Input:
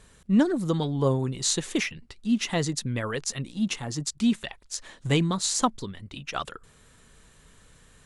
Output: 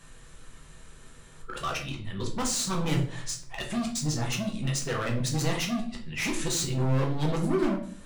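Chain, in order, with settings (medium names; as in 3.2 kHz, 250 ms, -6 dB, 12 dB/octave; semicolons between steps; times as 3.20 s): reverse the whole clip; in parallel at +0.5 dB: peak limiter -18.5 dBFS, peak gain reduction 9.5 dB; on the sum: hard clipper -23 dBFS, distortion -6 dB; simulated room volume 56 m³, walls mixed, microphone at 0.69 m; trim -6 dB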